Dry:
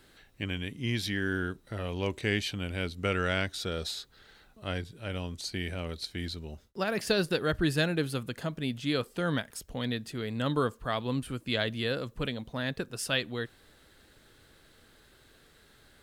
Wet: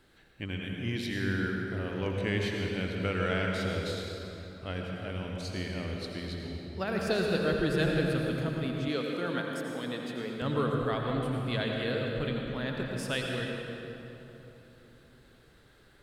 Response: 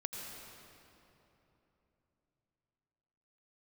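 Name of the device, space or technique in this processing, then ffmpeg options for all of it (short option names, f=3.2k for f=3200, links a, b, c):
swimming-pool hall: -filter_complex "[1:a]atrim=start_sample=2205[a];[0:a][a]afir=irnorm=-1:irlink=0,highshelf=f=3.9k:g=-7,asettb=1/sr,asplit=3[b][c][d];[b]atrim=end=8.884[e];[c]atrim=start=8.88:end=10.42,asetpts=PTS-STARTPTS,afade=t=in:d=0.004:c=qsin,afade=t=out:st=1.536:d=0.004:c=qsin,highpass=230[f];[d]atrim=start=10.416[g];[e][f]acrossfade=d=0.004:c1=hsin:c2=qsin[h];[h][g]acrossfade=d=0.004:c1=qsin:c2=hsin"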